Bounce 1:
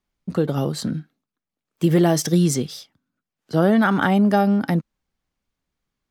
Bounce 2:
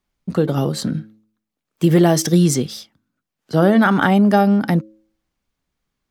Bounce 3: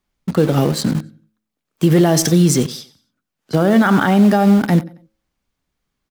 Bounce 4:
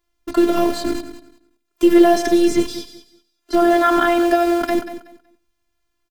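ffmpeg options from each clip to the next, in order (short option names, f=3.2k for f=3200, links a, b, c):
-af "bandreject=f=108:t=h:w=4,bandreject=f=216:t=h:w=4,bandreject=f=324:t=h:w=4,bandreject=f=432:t=h:w=4,bandreject=f=540:t=h:w=4,volume=3.5dB"
-filter_complex "[0:a]aecho=1:1:91|182|273:0.133|0.044|0.0145,asplit=2[a][b];[b]acrusher=bits=3:mix=0:aa=0.000001,volume=-9.5dB[c];[a][c]amix=inputs=2:normalize=0,alimiter=level_in=5dB:limit=-1dB:release=50:level=0:latency=1,volume=-3.5dB"
-filter_complex "[0:a]afftfilt=real='hypot(re,im)*cos(PI*b)':imag='0':win_size=512:overlap=0.75,acrossover=split=3200[a][b];[b]acompressor=threshold=-33dB:ratio=4:attack=1:release=60[c];[a][c]amix=inputs=2:normalize=0,aecho=1:1:187|374|561:0.237|0.0522|0.0115,volume=5dB"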